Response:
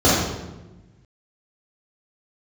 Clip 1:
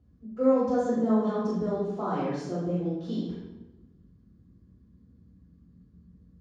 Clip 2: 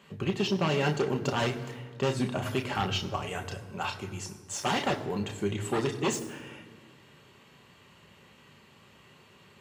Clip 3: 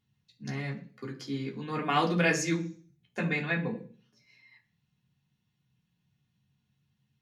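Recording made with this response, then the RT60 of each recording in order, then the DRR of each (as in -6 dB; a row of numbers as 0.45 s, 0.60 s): 1; 1.1 s, 1.7 s, 0.45 s; -10.0 dB, 4.5 dB, -2.0 dB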